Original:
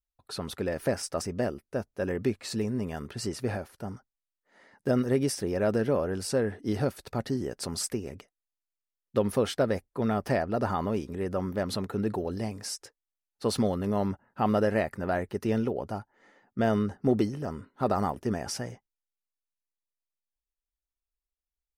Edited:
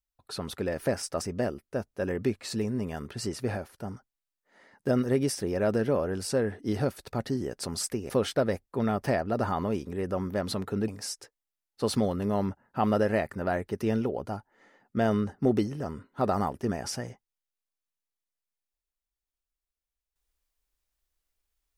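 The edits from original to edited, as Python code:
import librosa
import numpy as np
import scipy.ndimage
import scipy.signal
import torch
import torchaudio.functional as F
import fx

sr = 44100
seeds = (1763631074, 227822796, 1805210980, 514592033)

y = fx.edit(x, sr, fx.cut(start_s=8.1, length_s=1.22),
    fx.cut(start_s=12.1, length_s=0.4), tone=tone)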